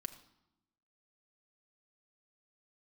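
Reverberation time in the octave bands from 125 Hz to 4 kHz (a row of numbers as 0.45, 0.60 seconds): 1.2, 1.2, 0.85, 0.90, 0.70, 0.70 seconds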